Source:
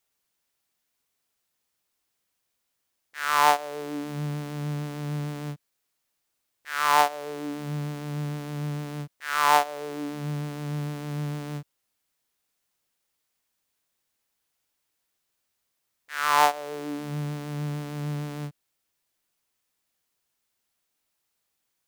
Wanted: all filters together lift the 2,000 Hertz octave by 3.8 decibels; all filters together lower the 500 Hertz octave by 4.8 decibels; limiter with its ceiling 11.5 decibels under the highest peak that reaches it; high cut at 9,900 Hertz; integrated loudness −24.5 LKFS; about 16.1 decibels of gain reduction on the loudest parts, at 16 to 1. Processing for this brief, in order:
low-pass filter 9,900 Hz
parametric band 500 Hz −6.5 dB
parametric band 2,000 Hz +5.5 dB
downward compressor 16 to 1, threshold −29 dBFS
level +16.5 dB
brickwall limiter −14.5 dBFS

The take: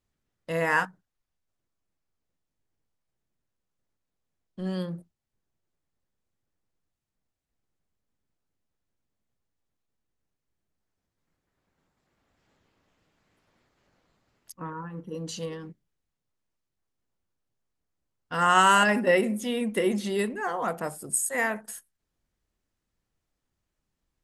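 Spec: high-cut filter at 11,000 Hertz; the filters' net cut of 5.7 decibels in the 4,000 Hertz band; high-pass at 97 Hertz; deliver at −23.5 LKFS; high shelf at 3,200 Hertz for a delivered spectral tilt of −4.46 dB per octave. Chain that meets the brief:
high-pass filter 97 Hz
low-pass filter 11,000 Hz
high-shelf EQ 3,200 Hz −3.5 dB
parametric band 4,000 Hz −7 dB
level +3.5 dB

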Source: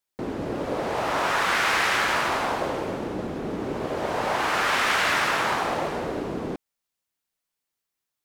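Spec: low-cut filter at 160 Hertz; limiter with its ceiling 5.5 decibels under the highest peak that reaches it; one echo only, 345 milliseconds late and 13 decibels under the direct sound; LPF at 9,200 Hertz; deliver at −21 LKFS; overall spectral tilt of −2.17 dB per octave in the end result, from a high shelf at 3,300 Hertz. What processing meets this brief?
high-pass filter 160 Hz
low-pass filter 9,200 Hz
high-shelf EQ 3,300 Hz −9 dB
brickwall limiter −18 dBFS
single-tap delay 345 ms −13 dB
level +7 dB

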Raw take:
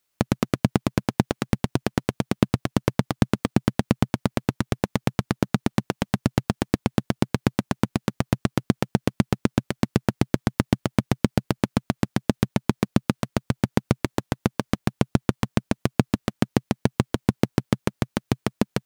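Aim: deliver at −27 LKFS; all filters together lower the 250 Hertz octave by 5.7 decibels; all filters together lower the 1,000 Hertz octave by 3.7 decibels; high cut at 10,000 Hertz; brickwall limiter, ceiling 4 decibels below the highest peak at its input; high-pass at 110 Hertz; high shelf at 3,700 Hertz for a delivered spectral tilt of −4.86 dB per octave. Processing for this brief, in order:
high-pass filter 110 Hz
low-pass filter 10,000 Hz
parametric band 250 Hz −7 dB
parametric band 1,000 Hz −5 dB
high-shelf EQ 3,700 Hz +7 dB
level +4.5 dB
brickwall limiter 0 dBFS

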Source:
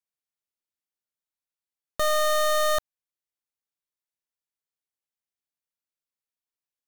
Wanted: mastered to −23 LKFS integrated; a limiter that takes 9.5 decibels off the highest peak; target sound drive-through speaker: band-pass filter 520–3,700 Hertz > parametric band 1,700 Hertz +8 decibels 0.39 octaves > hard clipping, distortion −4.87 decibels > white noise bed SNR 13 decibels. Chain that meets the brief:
brickwall limiter −31.5 dBFS
band-pass filter 520–3,700 Hz
parametric band 1,700 Hz +8 dB 0.39 octaves
hard clipping −38 dBFS
white noise bed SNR 13 dB
level +18.5 dB

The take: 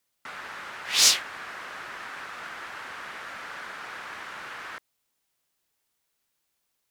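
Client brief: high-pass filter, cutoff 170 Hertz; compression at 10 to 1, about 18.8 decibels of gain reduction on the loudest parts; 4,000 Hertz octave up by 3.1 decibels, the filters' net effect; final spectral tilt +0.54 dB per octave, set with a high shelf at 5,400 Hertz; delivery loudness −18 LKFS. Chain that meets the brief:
high-pass filter 170 Hz
parametric band 4,000 Hz +5.5 dB
high-shelf EQ 5,400 Hz −3.5 dB
downward compressor 10 to 1, threshold −32 dBFS
level +19 dB

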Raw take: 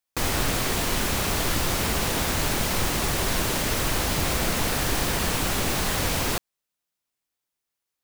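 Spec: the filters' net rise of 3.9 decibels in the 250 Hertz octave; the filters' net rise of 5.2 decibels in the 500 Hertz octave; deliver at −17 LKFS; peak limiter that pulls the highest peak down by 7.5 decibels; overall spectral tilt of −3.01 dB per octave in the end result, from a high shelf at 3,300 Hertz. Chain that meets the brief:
parametric band 250 Hz +3.5 dB
parametric band 500 Hz +5.5 dB
high-shelf EQ 3,300 Hz +3 dB
level +8 dB
brickwall limiter −8 dBFS

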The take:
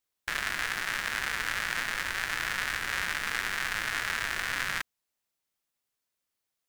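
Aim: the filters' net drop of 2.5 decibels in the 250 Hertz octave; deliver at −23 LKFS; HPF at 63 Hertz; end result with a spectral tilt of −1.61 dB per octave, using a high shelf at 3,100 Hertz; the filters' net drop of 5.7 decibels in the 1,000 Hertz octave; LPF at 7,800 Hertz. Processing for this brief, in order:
high-pass filter 63 Hz
low-pass filter 7,800 Hz
parametric band 250 Hz −3 dB
parametric band 1,000 Hz −6.5 dB
high-shelf EQ 3,100 Hz −8 dB
level +11.5 dB

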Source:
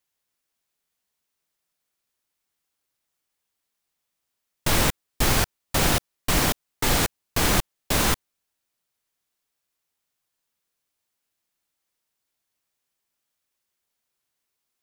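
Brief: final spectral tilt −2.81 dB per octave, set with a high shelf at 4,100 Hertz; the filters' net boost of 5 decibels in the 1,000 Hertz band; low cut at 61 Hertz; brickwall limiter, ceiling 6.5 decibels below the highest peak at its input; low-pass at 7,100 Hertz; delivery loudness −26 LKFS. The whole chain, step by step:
high-pass filter 61 Hz
low-pass filter 7,100 Hz
parametric band 1,000 Hz +6 dB
high-shelf EQ 4,100 Hz +4.5 dB
level +0.5 dB
brickwall limiter −14 dBFS

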